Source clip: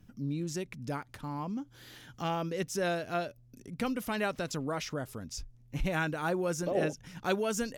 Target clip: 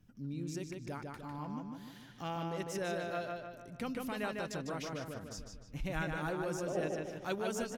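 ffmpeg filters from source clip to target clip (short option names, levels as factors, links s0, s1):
-filter_complex "[0:a]asplit=2[s0][s1];[s1]adelay=151,lowpass=f=4600:p=1,volume=0.708,asplit=2[s2][s3];[s3]adelay=151,lowpass=f=4600:p=1,volume=0.5,asplit=2[s4][s5];[s5]adelay=151,lowpass=f=4600:p=1,volume=0.5,asplit=2[s6][s7];[s7]adelay=151,lowpass=f=4600:p=1,volume=0.5,asplit=2[s8][s9];[s9]adelay=151,lowpass=f=4600:p=1,volume=0.5,asplit=2[s10][s11];[s11]adelay=151,lowpass=f=4600:p=1,volume=0.5,asplit=2[s12][s13];[s13]adelay=151,lowpass=f=4600:p=1,volume=0.5[s14];[s0][s2][s4][s6][s8][s10][s12][s14]amix=inputs=8:normalize=0,volume=0.447"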